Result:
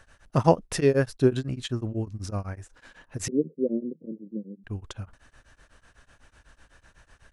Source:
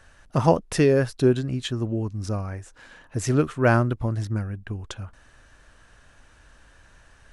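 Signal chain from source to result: 3.28–4.64 s: Chebyshev band-pass 160–530 Hz, order 5; tremolo of two beating tones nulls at 8 Hz

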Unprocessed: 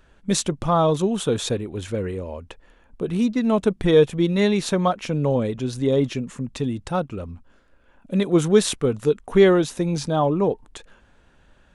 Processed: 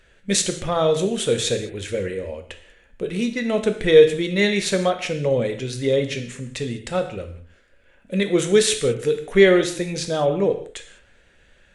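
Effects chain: ten-band graphic EQ 250 Hz -5 dB, 500 Hz +7 dB, 1 kHz -9 dB, 2 kHz +11 dB, 4 kHz +3 dB, 8 kHz +6 dB; gated-style reverb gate 230 ms falling, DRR 6 dB; trim -2.5 dB

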